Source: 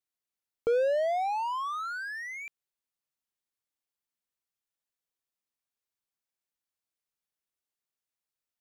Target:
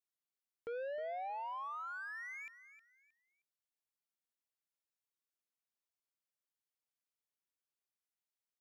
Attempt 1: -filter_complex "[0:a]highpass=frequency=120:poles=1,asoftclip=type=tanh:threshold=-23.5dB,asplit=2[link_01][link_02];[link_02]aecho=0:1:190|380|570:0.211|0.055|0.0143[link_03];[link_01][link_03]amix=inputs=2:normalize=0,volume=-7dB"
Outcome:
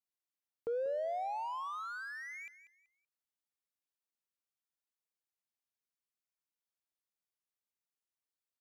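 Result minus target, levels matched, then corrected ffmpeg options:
echo 123 ms early; soft clipping: distortion −9 dB
-filter_complex "[0:a]highpass=frequency=120:poles=1,asoftclip=type=tanh:threshold=-32.5dB,asplit=2[link_01][link_02];[link_02]aecho=0:1:313|626|939:0.211|0.055|0.0143[link_03];[link_01][link_03]amix=inputs=2:normalize=0,volume=-7dB"

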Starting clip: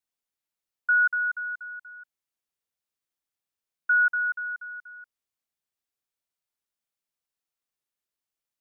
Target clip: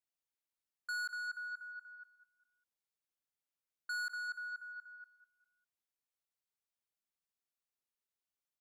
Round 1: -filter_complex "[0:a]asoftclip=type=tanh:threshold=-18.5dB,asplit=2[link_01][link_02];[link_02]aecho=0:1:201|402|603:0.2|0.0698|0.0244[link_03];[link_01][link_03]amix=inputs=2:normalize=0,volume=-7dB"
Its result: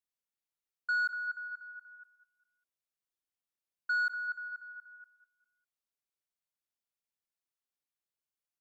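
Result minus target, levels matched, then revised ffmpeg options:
soft clipping: distortion −12 dB
-filter_complex "[0:a]asoftclip=type=tanh:threshold=-30dB,asplit=2[link_01][link_02];[link_02]aecho=0:1:201|402|603:0.2|0.0698|0.0244[link_03];[link_01][link_03]amix=inputs=2:normalize=0,volume=-7dB"

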